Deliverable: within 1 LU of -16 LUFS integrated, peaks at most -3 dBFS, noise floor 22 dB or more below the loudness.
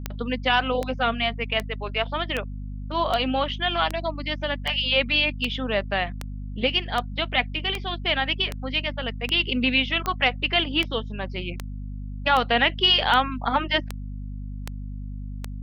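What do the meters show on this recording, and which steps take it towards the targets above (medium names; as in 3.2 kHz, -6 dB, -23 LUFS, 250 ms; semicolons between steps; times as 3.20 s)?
clicks found 21; hum 50 Hz; highest harmonic 250 Hz; hum level -31 dBFS; loudness -24.0 LUFS; peak level -7.5 dBFS; loudness target -16.0 LUFS
-> de-click; hum notches 50/100/150/200/250 Hz; trim +8 dB; peak limiter -3 dBFS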